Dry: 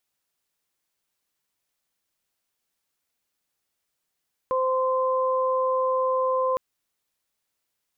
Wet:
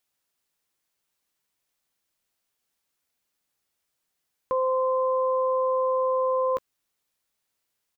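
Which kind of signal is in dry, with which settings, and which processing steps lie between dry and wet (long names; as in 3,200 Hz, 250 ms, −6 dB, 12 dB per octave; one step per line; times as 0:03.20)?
steady harmonic partials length 2.06 s, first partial 518 Hz, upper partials −2 dB, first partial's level −22.5 dB
double-tracking delay 15 ms −13.5 dB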